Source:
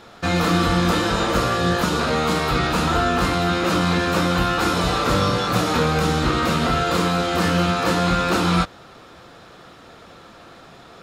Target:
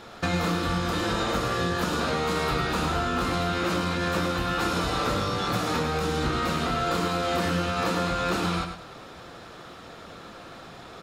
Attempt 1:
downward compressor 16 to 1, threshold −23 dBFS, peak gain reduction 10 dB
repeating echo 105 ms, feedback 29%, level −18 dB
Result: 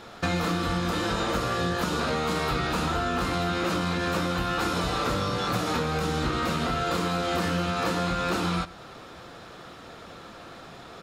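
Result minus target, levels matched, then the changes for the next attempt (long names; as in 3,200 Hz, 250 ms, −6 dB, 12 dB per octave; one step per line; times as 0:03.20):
echo-to-direct −10.5 dB
change: repeating echo 105 ms, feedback 29%, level −7.5 dB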